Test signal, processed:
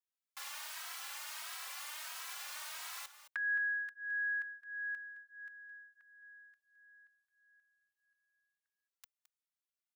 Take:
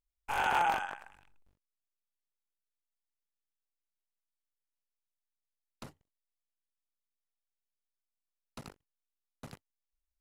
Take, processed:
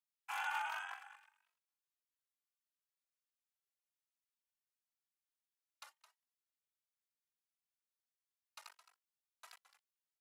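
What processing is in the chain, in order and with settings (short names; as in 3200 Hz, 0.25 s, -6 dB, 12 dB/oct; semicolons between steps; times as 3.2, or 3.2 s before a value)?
compressor, threshold -31 dBFS; HPF 930 Hz 24 dB/oct; on a send: echo 0.216 s -13 dB; on the sum: endless flanger 2.8 ms +1.5 Hz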